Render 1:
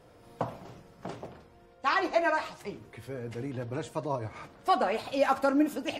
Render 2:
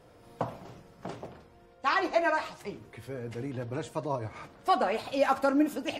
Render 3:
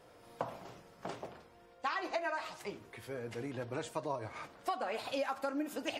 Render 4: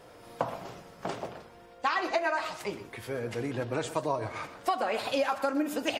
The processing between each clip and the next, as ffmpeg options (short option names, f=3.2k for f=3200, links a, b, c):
-af anull
-af "lowshelf=f=300:g=-9.5,acompressor=threshold=-32dB:ratio=12"
-af "aecho=1:1:124:0.211,volume=7.5dB"